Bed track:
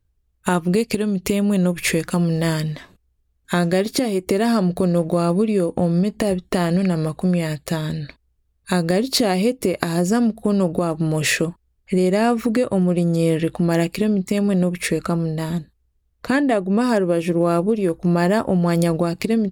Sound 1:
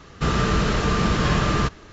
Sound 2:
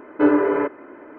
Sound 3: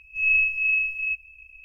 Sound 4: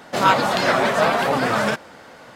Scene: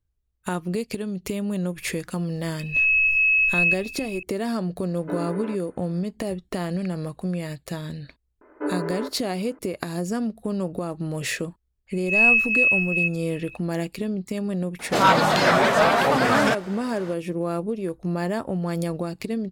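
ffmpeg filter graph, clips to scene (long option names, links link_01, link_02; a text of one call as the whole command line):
ffmpeg -i bed.wav -i cue0.wav -i cue1.wav -i cue2.wav -i cue3.wav -filter_complex "[3:a]asplit=2[link_01][link_02];[2:a]asplit=2[link_03][link_04];[0:a]volume=-8.5dB[link_05];[link_01]alimiter=level_in=24dB:limit=-1dB:release=50:level=0:latency=1[link_06];[link_04]highpass=280,lowpass=2200[link_07];[link_02]highshelf=frequency=2300:gain=9[link_08];[4:a]acontrast=66[link_09];[link_06]atrim=end=1.64,asetpts=PTS-STARTPTS,volume=-14dB,afade=type=in:duration=0.004:curve=hsin,afade=type=out:start_time=1.636:duration=0.004:curve=hsin,adelay=2590[link_10];[link_03]atrim=end=1.18,asetpts=PTS-STARTPTS,volume=-14.5dB,afade=type=in:duration=0.004:curve=hsin,afade=type=out:start_time=1.176:duration=0.004:curve=hsin,adelay=4880[link_11];[link_07]atrim=end=1.18,asetpts=PTS-STARTPTS,volume=-10dB,afade=type=in:duration=0.004:curve=hsin,afade=type=out:start_time=1.176:duration=0.004:curve=hsin,adelay=8410[link_12];[link_08]atrim=end=1.64,asetpts=PTS-STARTPTS,volume=-1.5dB,afade=type=in:duration=0.004:curve=hsin,afade=type=out:start_time=1.636:duration=0.004:curve=hsin,adelay=11930[link_13];[link_09]atrim=end=2.35,asetpts=PTS-STARTPTS,volume=-5.5dB,afade=type=in:duration=0.004:curve=hsin,afade=type=out:start_time=2.346:duration=0.004:curve=hsin,adelay=14790[link_14];[link_05][link_10][link_11][link_12][link_13][link_14]amix=inputs=6:normalize=0" out.wav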